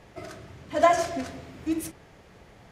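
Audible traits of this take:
background noise floor −53 dBFS
spectral slope −4.5 dB per octave

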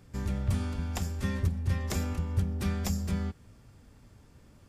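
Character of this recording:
background noise floor −57 dBFS
spectral slope −6.0 dB per octave

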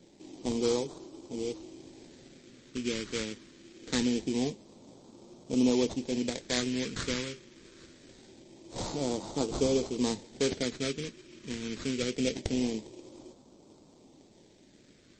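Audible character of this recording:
aliases and images of a low sample rate 2,800 Hz, jitter 20%
phaser sweep stages 2, 0.24 Hz, lowest notch 760–1,700 Hz
MP3

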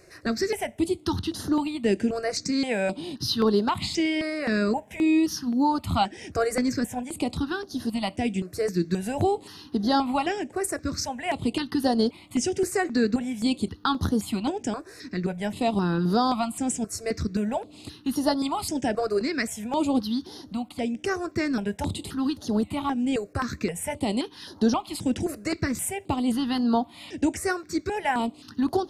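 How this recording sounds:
notches that jump at a steady rate 3.8 Hz 880–7,900 Hz

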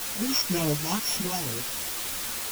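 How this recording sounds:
a buzz of ramps at a fixed pitch in blocks of 8 samples
phaser sweep stages 8, 2 Hz, lowest notch 530–1,500 Hz
a quantiser's noise floor 6 bits, dither triangular
a shimmering, thickened sound

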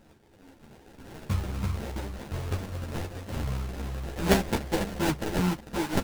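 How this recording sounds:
a buzz of ramps at a fixed pitch in blocks of 32 samples
phaser sweep stages 2, 2.6 Hz, lowest notch 160–1,700 Hz
aliases and images of a low sample rate 1,200 Hz, jitter 20%
a shimmering, thickened sound

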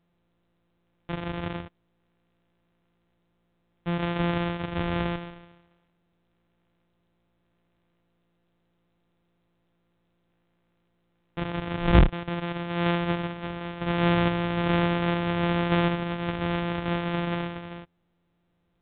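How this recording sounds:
a buzz of ramps at a fixed pitch in blocks of 256 samples
sample-and-hold tremolo
A-law companding

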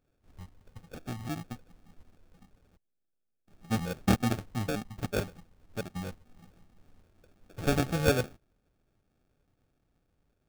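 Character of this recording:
aliases and images of a low sample rate 1,000 Hz, jitter 0%

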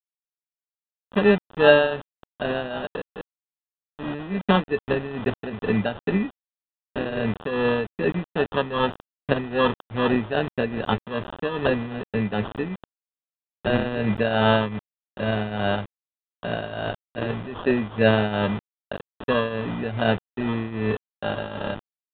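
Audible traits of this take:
a quantiser's noise floor 6 bits, dither none
tremolo triangle 2.5 Hz, depth 75%
aliases and images of a low sample rate 2,200 Hz, jitter 0%
mu-law

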